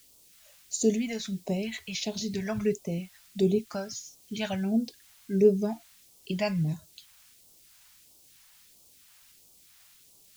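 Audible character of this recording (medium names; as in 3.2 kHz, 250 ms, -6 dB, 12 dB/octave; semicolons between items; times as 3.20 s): a quantiser's noise floor 10-bit, dither triangular; phasing stages 2, 1.5 Hz, lowest notch 320–1700 Hz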